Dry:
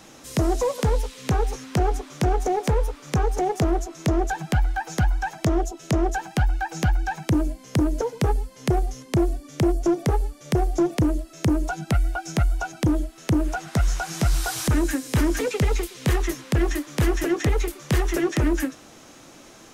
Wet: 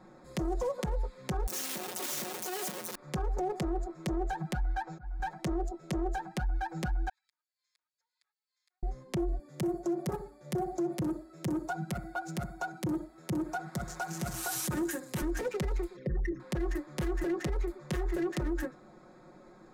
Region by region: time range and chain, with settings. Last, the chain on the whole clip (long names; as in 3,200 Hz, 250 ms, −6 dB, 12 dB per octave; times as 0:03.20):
0:01.47–0:02.95: sign of each sample alone + high-pass filter 200 Hz 24 dB per octave + high-shelf EQ 5,700 Hz +10.5 dB
0:04.56–0:05.20: low-pass filter 7,300 Hz 24 dB per octave + volume swells 481 ms
0:07.09–0:08.83: downward compressor, threshold −34 dBFS + four-pole ladder high-pass 2,700 Hz, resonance 25% + spectral tilt −2.5 dB per octave
0:09.39–0:15.22: high-pass filter 86 Hz 24 dB per octave + high-shelf EQ 9,000 Hz +11.5 dB + repeating echo 62 ms, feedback 30%, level −14.5 dB
0:15.96–0:16.40: spectral envelope exaggerated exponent 3 + parametric band 1,800 Hz +11.5 dB 1.9 octaves + hum removal 53.99 Hz, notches 10
whole clip: adaptive Wiener filter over 15 samples; comb filter 5.5 ms, depth 77%; brickwall limiter −18 dBFS; level −7 dB